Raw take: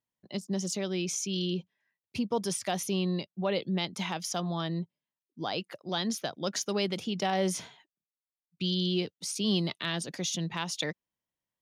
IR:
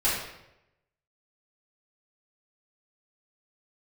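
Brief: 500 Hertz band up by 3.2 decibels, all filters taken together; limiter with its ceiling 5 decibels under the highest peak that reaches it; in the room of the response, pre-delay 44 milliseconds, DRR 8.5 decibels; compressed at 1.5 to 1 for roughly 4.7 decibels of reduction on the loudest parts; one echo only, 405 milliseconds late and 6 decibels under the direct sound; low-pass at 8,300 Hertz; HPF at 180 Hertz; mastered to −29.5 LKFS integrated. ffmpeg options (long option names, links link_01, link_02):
-filter_complex "[0:a]highpass=180,lowpass=8300,equalizer=frequency=500:width_type=o:gain=4.5,acompressor=threshold=-35dB:ratio=1.5,alimiter=level_in=0.5dB:limit=-24dB:level=0:latency=1,volume=-0.5dB,aecho=1:1:405:0.501,asplit=2[link_01][link_02];[1:a]atrim=start_sample=2205,adelay=44[link_03];[link_02][link_03]afir=irnorm=-1:irlink=0,volume=-21dB[link_04];[link_01][link_04]amix=inputs=2:normalize=0,volume=5.5dB"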